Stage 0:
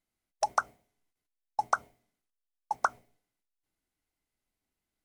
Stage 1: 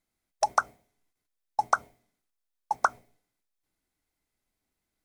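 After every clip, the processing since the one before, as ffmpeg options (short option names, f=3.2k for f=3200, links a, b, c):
-af "bandreject=f=2.9k:w=13,volume=3.5dB"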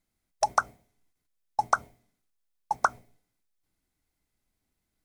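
-af "bass=f=250:g=6,treble=f=4k:g=1"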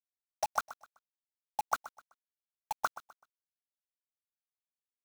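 -af "acrusher=bits=4:mix=0:aa=0.000001,aecho=1:1:127|254|381:0.158|0.0475|0.0143,volume=-8.5dB"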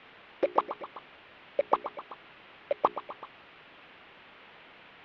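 -af "aeval=exprs='val(0)+0.5*0.0112*sgn(val(0))':c=same,highpass=f=420:t=q:w=0.5412,highpass=f=420:t=q:w=1.307,lowpass=f=3.3k:t=q:w=0.5176,lowpass=f=3.3k:t=q:w=0.7071,lowpass=f=3.3k:t=q:w=1.932,afreqshift=-280,bandreject=f=60:t=h:w=6,bandreject=f=120:t=h:w=6,bandreject=f=180:t=h:w=6,bandreject=f=240:t=h:w=6,bandreject=f=300:t=h:w=6,bandreject=f=360:t=h:w=6,bandreject=f=420:t=h:w=6,volume=6dB"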